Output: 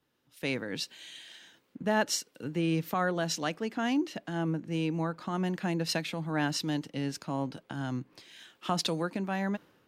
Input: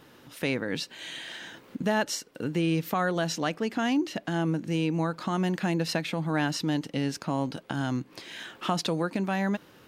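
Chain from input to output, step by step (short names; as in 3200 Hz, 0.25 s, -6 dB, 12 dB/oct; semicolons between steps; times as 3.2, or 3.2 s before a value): three-band expander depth 70%; gain -3.5 dB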